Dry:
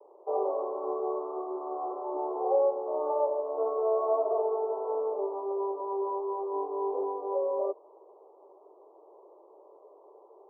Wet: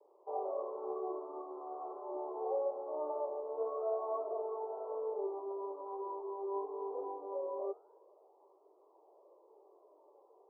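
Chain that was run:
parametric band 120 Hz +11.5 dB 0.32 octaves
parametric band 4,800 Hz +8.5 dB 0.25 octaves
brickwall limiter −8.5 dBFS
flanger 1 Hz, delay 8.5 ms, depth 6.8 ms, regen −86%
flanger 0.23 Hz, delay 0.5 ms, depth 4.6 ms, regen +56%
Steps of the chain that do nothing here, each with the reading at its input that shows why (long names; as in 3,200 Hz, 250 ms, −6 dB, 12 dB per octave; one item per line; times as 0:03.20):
parametric band 120 Hz: nothing at its input below 290 Hz
parametric band 4,800 Hz: nothing at its input above 1,200 Hz
brickwall limiter −8.5 dBFS: peak of its input −15.5 dBFS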